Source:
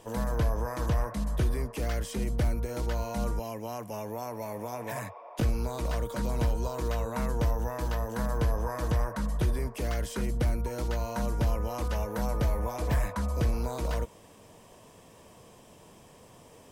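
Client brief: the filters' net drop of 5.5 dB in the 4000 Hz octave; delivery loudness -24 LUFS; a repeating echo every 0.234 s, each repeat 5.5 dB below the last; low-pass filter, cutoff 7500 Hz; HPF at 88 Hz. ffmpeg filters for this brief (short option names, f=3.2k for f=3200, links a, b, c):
-af "highpass=88,lowpass=7.5k,equalizer=f=4k:t=o:g=-7,aecho=1:1:234|468|702|936|1170|1404|1638:0.531|0.281|0.149|0.079|0.0419|0.0222|0.0118,volume=9.5dB"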